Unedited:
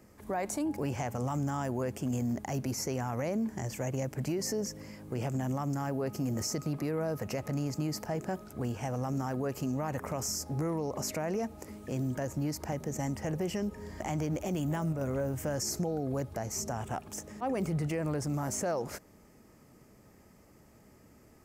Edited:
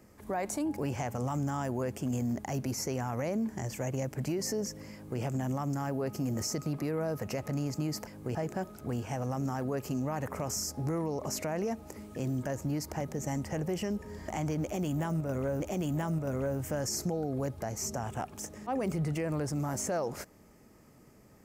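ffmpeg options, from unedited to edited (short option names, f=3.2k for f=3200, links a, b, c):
-filter_complex "[0:a]asplit=4[a][b][c][d];[a]atrim=end=8.072[e];[b]atrim=start=4.928:end=5.212[f];[c]atrim=start=8.068:end=15.322[g];[d]atrim=start=14.338[h];[e][f]acrossfade=d=0.004:c1=hsin:c2=hsin[i];[i][g]acrossfade=d=0.004:c1=hsin:c2=hsin[j];[j][h]acrossfade=d=0.004:c1=hsin:c2=hsin"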